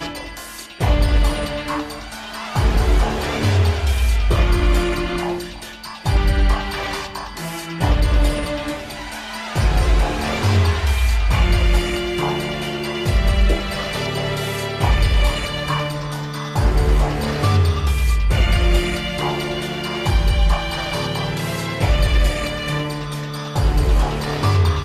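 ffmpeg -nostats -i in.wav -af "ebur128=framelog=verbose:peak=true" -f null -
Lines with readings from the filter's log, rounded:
Integrated loudness:
  I:         -20.2 LUFS
  Threshold: -30.4 LUFS
Loudness range:
  LRA:         2.5 LU
  Threshold: -40.3 LUFS
  LRA low:   -21.6 LUFS
  LRA high:  -19.1 LUFS
True peak:
  Peak:       -3.7 dBFS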